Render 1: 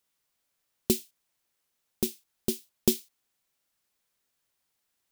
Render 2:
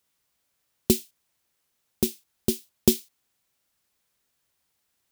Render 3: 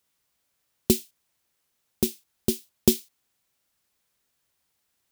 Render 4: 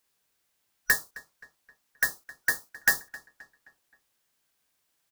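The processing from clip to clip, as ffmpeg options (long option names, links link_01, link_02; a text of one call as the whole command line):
ffmpeg -i in.wav -af "highpass=45,lowshelf=frequency=120:gain=7,volume=3.5dB" out.wav
ffmpeg -i in.wav -af anull out.wav
ffmpeg -i in.wav -filter_complex "[0:a]afftfilt=real='real(if(lt(b,272),68*(eq(floor(b/68),0)*3+eq(floor(b/68),1)*0+eq(floor(b/68),2)*1+eq(floor(b/68),3)*2)+mod(b,68),b),0)':imag='imag(if(lt(b,272),68*(eq(floor(b/68),0)*3+eq(floor(b/68),1)*0+eq(floor(b/68),2)*1+eq(floor(b/68),3)*2)+mod(b,68),b),0)':win_size=2048:overlap=0.75,asoftclip=type=tanh:threshold=-12dB,asplit=2[link_01][link_02];[link_02]adelay=263,lowpass=frequency=3800:poles=1,volume=-19dB,asplit=2[link_03][link_04];[link_04]adelay=263,lowpass=frequency=3800:poles=1,volume=0.48,asplit=2[link_05][link_06];[link_06]adelay=263,lowpass=frequency=3800:poles=1,volume=0.48,asplit=2[link_07][link_08];[link_08]adelay=263,lowpass=frequency=3800:poles=1,volume=0.48[link_09];[link_01][link_03][link_05][link_07][link_09]amix=inputs=5:normalize=0" out.wav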